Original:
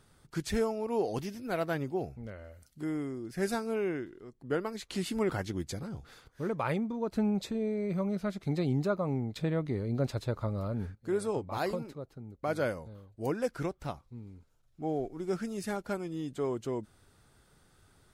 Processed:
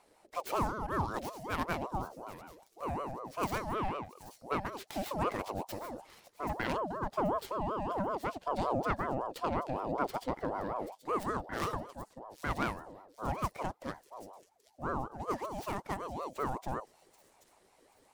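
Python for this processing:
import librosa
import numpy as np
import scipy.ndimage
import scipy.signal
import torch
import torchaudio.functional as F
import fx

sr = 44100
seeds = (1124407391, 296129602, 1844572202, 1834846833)

y = fx.tracing_dist(x, sr, depth_ms=0.22)
y = fx.echo_wet_highpass(y, sr, ms=782, feedback_pct=35, hz=5400.0, wet_db=-7.5)
y = fx.ring_lfo(y, sr, carrier_hz=630.0, swing_pct=40, hz=5.3)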